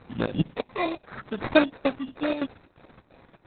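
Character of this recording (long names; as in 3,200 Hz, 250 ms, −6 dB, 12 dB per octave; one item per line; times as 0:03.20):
chopped level 2.9 Hz, depth 60%, duty 75%
aliases and images of a low sample rate 3,100 Hz, jitter 0%
Opus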